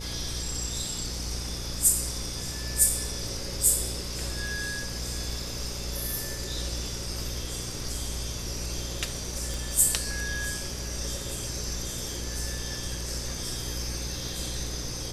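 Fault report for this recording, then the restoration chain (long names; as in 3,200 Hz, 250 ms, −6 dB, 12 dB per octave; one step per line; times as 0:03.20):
mains buzz 60 Hz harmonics 9 −37 dBFS
0:09.54: click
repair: click removal
hum removal 60 Hz, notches 9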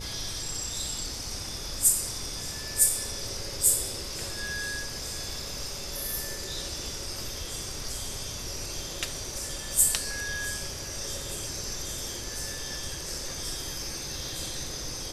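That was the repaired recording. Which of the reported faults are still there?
none of them is left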